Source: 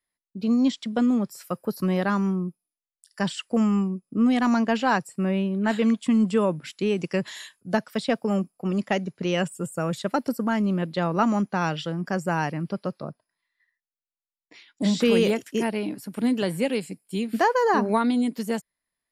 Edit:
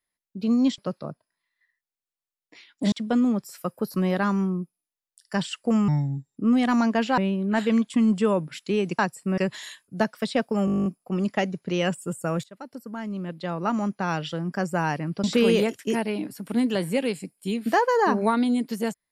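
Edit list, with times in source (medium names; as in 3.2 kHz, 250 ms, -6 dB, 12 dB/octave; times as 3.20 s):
3.74–4.10 s: speed 74%
4.91–5.30 s: move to 7.11 s
8.39 s: stutter 0.02 s, 11 plays
9.97–12.01 s: fade in, from -21.5 dB
12.77–14.91 s: move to 0.78 s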